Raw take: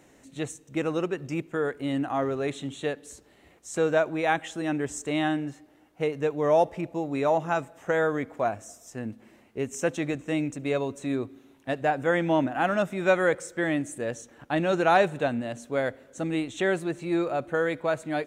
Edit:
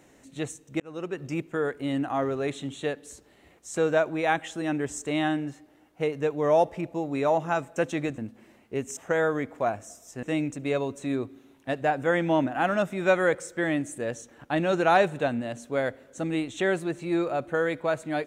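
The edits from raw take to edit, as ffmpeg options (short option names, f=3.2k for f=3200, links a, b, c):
-filter_complex "[0:a]asplit=6[a][b][c][d][e][f];[a]atrim=end=0.8,asetpts=PTS-STARTPTS,afade=t=out:st=0.796:d=0.004:c=hsin[g];[b]atrim=start=0.8:end=7.762,asetpts=PTS-STARTPTS,afade=t=in:d=0.45[h];[c]atrim=start=9.808:end=10.232[i];[d]atrim=start=9.018:end=9.812[j];[e]atrim=start=7.758:end=9.022[k];[f]atrim=start=10.228[l];[g][h]concat=n=2:v=0:a=1[m];[m][i]acrossfade=d=0.004:c1=hsin:c2=hsin[n];[n][j]acrossfade=d=0.004:c1=hsin:c2=hsin[o];[o][k]acrossfade=d=0.004:c1=hsin:c2=hsin[p];[p][l]acrossfade=d=0.004:c1=hsin:c2=hsin"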